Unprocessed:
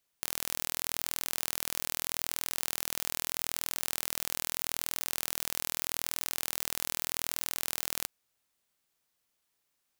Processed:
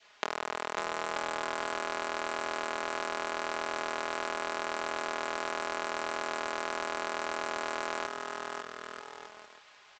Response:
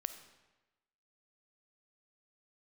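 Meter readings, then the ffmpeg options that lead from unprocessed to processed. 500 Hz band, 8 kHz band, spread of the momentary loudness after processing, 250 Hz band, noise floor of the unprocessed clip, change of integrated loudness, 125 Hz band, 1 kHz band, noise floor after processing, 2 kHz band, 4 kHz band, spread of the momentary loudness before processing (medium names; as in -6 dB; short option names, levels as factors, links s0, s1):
+13.0 dB, -11.5 dB, 6 LU, +6.0 dB, -79 dBFS, -2.0 dB, -5.5 dB, +12.5 dB, -58 dBFS, +6.5 dB, -3.5 dB, 0 LU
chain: -filter_complex "[0:a]asplit=2[s0][s1];[s1]highpass=f=720:p=1,volume=39.8,asoftclip=type=tanh:threshold=0.562[s2];[s0][s2]amix=inputs=2:normalize=0,lowpass=f=1100:p=1,volume=0.501,acompressor=threshold=0.02:ratio=5,lowshelf=f=470:g=-9,aecho=1:1:550|935|1204|1393|1525:0.631|0.398|0.251|0.158|0.1,adynamicequalizer=threshold=0.00158:dfrequency=1200:dqfactor=1.6:tfrequency=1200:tqfactor=1.6:attack=5:release=100:ratio=0.375:range=2:mode=boostabove:tftype=bell,highpass=370,lowpass=4700,aecho=1:1:4.8:0.63,aresample=16000,acrusher=bits=2:mode=log:mix=0:aa=0.000001,aresample=44100,volume=2.24"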